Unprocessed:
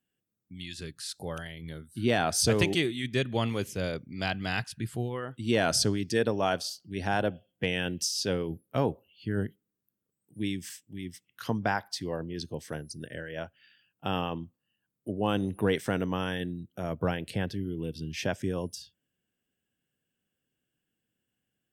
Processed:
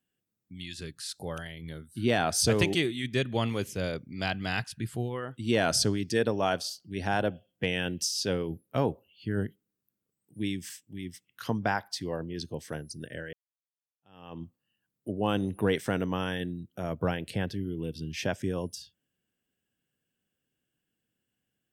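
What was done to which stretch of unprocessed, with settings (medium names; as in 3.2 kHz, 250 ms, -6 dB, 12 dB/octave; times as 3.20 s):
13.33–14.42 s: fade in exponential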